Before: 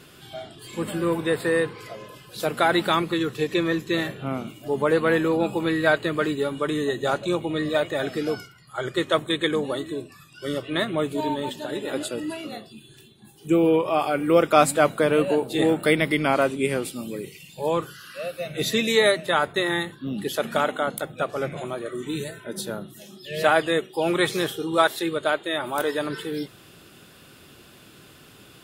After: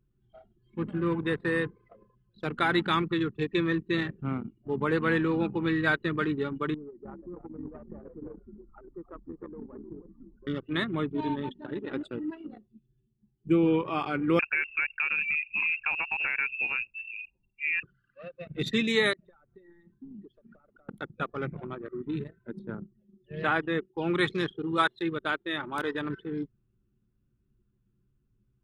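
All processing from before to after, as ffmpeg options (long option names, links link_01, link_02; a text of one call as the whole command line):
ffmpeg -i in.wav -filter_complex "[0:a]asettb=1/sr,asplit=3[link_01][link_02][link_03];[link_01]atrim=end=6.744[link_04];[link_02]atrim=start=6.74:end=10.47,asetpts=PTS-STARTPTS,afade=type=in:duration=0.004:curve=qsin,afade=type=out:start_time=3.726:duration=0.004:curve=qsin,lowpass=frequency=990:width_type=q:width=2.1,acompressor=threshold=-39dB:ratio=2.5:attack=3.2:release=140:knee=1:detection=peak,asplit=6[link_05][link_06][link_07][link_08][link_09][link_10];[link_06]adelay=306,afreqshift=-90,volume=-4dB[link_11];[link_07]adelay=612,afreqshift=-180,volume=-11.5dB[link_12];[link_08]adelay=918,afreqshift=-270,volume=-19.1dB[link_13];[link_09]adelay=1224,afreqshift=-360,volume=-26.6dB[link_14];[link_10]adelay=1530,afreqshift=-450,volume=-34.1dB[link_15];[link_05][link_11][link_12][link_13][link_14][link_15]amix=inputs=6:normalize=0,atrim=end_sample=164493[link_16];[link_03]atrim=start=10.466[link_17];[link_04][link_16]acrossfade=duration=0.004:curve1=hsin:curve2=qsin[link_18];[link_18][link_17]acrossfade=duration=0.004:curve1=qsin:curve2=hsin,asettb=1/sr,asplit=3[link_19][link_20][link_21];[link_19]atrim=end=14.394[link_22];[link_20]atrim=start=14.39:end=17.83,asetpts=PTS-STARTPTS,afade=type=in:duration=0.004:curve=qsin,afade=type=out:start_time=3.436:duration=0.004:curve=qsin,acompressor=threshold=-20dB:ratio=5:attack=3.2:release=140:knee=1:detection=peak,lowpass=frequency=2500:width_type=q:width=0.5098,lowpass=frequency=2500:width_type=q:width=0.6013,lowpass=frequency=2500:width_type=q:width=0.9,lowpass=frequency=2500:width_type=q:width=2.563,afreqshift=-2900[link_23];[link_21]atrim=start=17.826[link_24];[link_22][link_23]acrossfade=duration=0.004:curve1=hsin:curve2=qsin[link_25];[link_25][link_24]acrossfade=duration=0.004:curve1=qsin:curve2=hsin,asettb=1/sr,asplit=3[link_26][link_27][link_28];[link_26]atrim=end=19.134[link_29];[link_27]atrim=start=19.13:end=20.89,asetpts=PTS-STARTPTS,afade=type=in:duration=0.004:curve=qsin,afade=type=out:start_time=1.756:duration=0.004:curve=qsin,acompressor=threshold=-35dB:ratio=6:attack=3.2:release=140:knee=1:detection=peak,volume=34dB,asoftclip=hard,volume=-34dB[link_30];[link_28]atrim=start=20.886[link_31];[link_29][link_30]acrossfade=duration=0.004:curve1=hsin:curve2=qsin[link_32];[link_32][link_31]acrossfade=duration=0.004:curve1=qsin:curve2=hsin,asettb=1/sr,asplit=3[link_33][link_34][link_35];[link_33]atrim=end=22.594[link_36];[link_34]atrim=start=22.59:end=24.14,asetpts=PTS-STARTPTS,afade=type=in:duration=0.004:curve=qsin,afade=type=out:start_time=1.546:duration=0.004:curve=qsin,lowpass=frequency=2300:poles=1,acompressor=mode=upward:threshold=-41dB:ratio=2.5:attack=3.2:release=140:knee=2.83:detection=peak[link_37];[link_35]atrim=start=24.136[link_38];[link_36][link_37]acrossfade=duration=0.004:curve1=hsin:curve2=qsin[link_39];[link_39][link_38]acrossfade=duration=0.004:curve1=qsin:curve2=hsin,lowpass=frequency=2500:poles=1,anlmdn=39.8,equalizer=frequency=620:width=1.6:gain=-14.5" out.wav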